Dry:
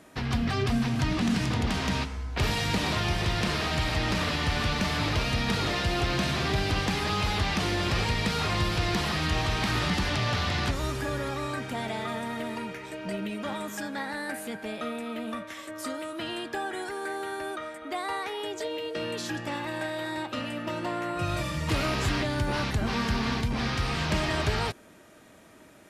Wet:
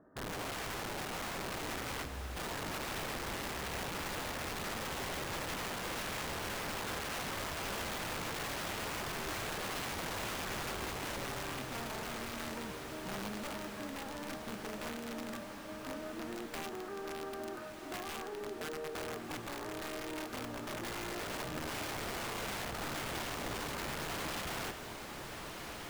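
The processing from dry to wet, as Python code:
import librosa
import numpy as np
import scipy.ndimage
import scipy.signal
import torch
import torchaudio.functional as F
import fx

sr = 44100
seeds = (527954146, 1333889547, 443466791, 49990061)

y = np.r_[np.sort(x[:len(x) // 16 * 16].reshape(-1, 16), axis=1).ravel(), x[len(x) // 16 * 16:]]
y = scipy.signal.sosfilt(scipy.signal.cheby1(6, 3, 1800.0, 'lowpass', fs=sr, output='sos'), y)
y = (np.mod(10.0 ** (29.0 / 20.0) * y + 1.0, 2.0) - 1.0) / 10.0 ** (29.0 / 20.0)
y = fx.echo_diffused(y, sr, ms=1355, feedback_pct=66, wet_db=-7.0)
y = y * librosa.db_to_amplitude(-6.5)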